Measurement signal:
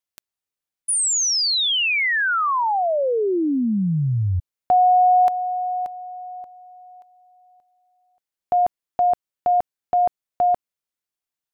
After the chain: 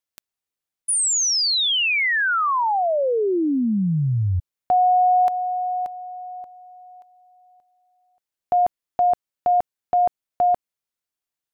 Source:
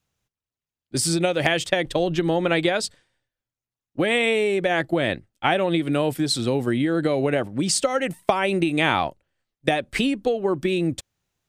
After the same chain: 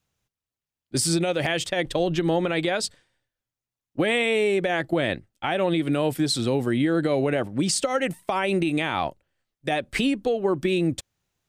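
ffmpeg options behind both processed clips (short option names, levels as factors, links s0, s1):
-af "alimiter=limit=0.224:level=0:latency=1:release=61"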